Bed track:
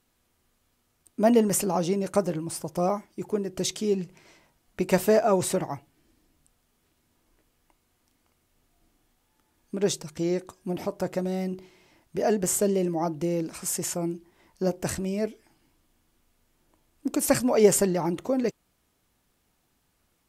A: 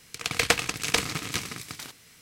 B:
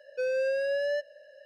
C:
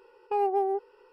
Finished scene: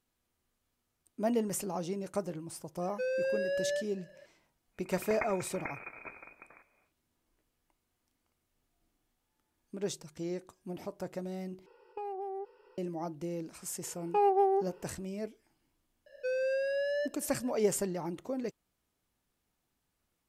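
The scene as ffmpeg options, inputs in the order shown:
-filter_complex "[2:a]asplit=2[a][b];[3:a]asplit=2[c][d];[0:a]volume=-10.5dB[e];[1:a]lowpass=f=2.2k:t=q:w=0.5098,lowpass=f=2.2k:t=q:w=0.6013,lowpass=f=2.2k:t=q:w=0.9,lowpass=f=2.2k:t=q:w=2.563,afreqshift=-2600[f];[c]acompressor=threshold=-32dB:ratio=6:attack=3.2:release=140:knee=1:detection=peak[g];[e]asplit=2[h][i];[h]atrim=end=11.664[j];[g]atrim=end=1.12,asetpts=PTS-STARTPTS,volume=-4dB[k];[i]atrim=start=12.776[l];[a]atrim=end=1.45,asetpts=PTS-STARTPTS,volume=-4dB,afade=t=in:d=0.004:c=hsin,afade=t=out:st=1.446:d=0.004:c=hsin,adelay=2810[m];[f]atrim=end=2.21,asetpts=PTS-STARTPTS,volume=-12dB,afade=t=in:d=0.1,afade=t=out:st=2.11:d=0.1,adelay=4710[n];[d]atrim=end=1.12,asetpts=PTS-STARTPTS,afade=t=in:d=0.004:c=hsin,afade=t=out:st=1.116:d=0.004:c=hsin,adelay=13830[o];[b]atrim=end=1.45,asetpts=PTS-STARTPTS,volume=-3.5dB,afade=t=in:d=0.004:c=hsin,afade=t=out:st=1.446:d=0.004:c=hsin,adelay=16060[p];[j][k]acrossfade=d=0.004:c1=hsin:c2=hsin[q];[q][l]acrossfade=d=0.004:c1=hsin:c2=hsin[r];[r][m][n][o][p]amix=inputs=5:normalize=0"

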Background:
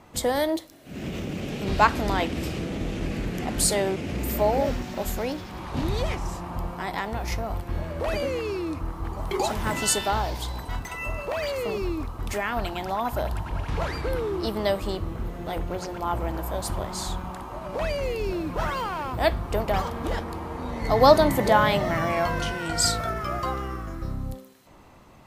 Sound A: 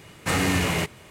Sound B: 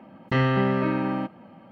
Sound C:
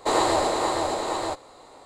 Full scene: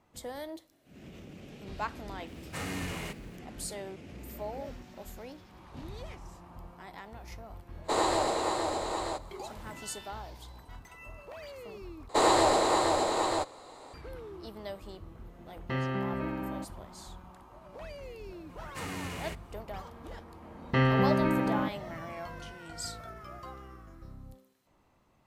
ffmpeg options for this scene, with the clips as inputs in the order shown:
-filter_complex "[1:a]asplit=2[a][b];[3:a]asplit=2[c][d];[2:a]asplit=2[e][f];[0:a]volume=-16.5dB[g];[a]acrusher=bits=9:dc=4:mix=0:aa=0.000001[h];[d]asoftclip=type=tanh:threshold=-10.5dB[i];[g]asplit=2[j][k];[j]atrim=end=12.094[l];[i]atrim=end=1.85,asetpts=PTS-STARTPTS,volume=-1dB[m];[k]atrim=start=13.936[n];[h]atrim=end=1.1,asetpts=PTS-STARTPTS,volume=-14dB,afade=t=in:d=0.004:c=hsin,afade=t=out:st=1.096:d=0.004:c=hsin,adelay=2270[o];[c]atrim=end=1.85,asetpts=PTS-STARTPTS,volume=-6dB,afade=t=in:d=0.05,afade=t=out:st=1.8:d=0.05,adelay=7830[p];[e]atrim=end=1.71,asetpts=PTS-STARTPTS,volume=-10.5dB,afade=t=in:d=0.004:c=hsin,afade=t=out:st=1.706:d=0.004:c=hsin,adelay=15380[q];[b]atrim=end=1.1,asetpts=PTS-STARTPTS,volume=-16dB,afade=t=in:d=0.004:c=hsin,afade=t=out:st=1.096:d=0.004:c=hsin,adelay=18490[r];[f]atrim=end=1.71,asetpts=PTS-STARTPTS,volume=-3dB,afade=t=in:d=0.004:c=hsin,afade=t=out:st=1.706:d=0.004:c=hsin,adelay=20420[s];[l][m]acrossfade=d=0.004:c1=hsin:c2=hsin[t];[t][n]acrossfade=d=0.004:c1=hsin:c2=hsin[u];[u][o][p][q][r][s]amix=inputs=6:normalize=0"

